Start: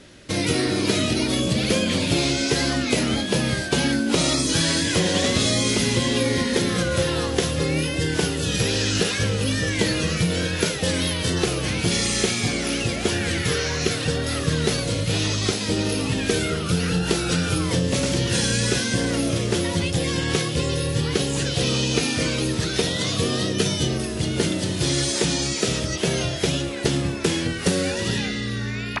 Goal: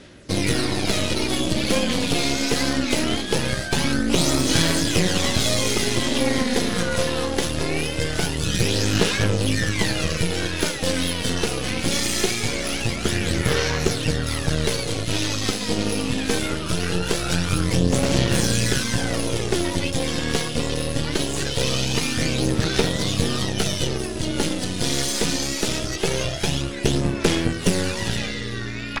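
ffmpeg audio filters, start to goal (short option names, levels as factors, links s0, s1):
-af "aeval=exprs='0.531*(cos(1*acos(clip(val(0)/0.531,-1,1)))-cos(1*PI/2))+0.0841*(cos(6*acos(clip(val(0)/0.531,-1,1)))-cos(6*PI/2))':c=same,aphaser=in_gain=1:out_gain=1:delay=4.2:decay=0.38:speed=0.22:type=sinusoidal,volume=0.794"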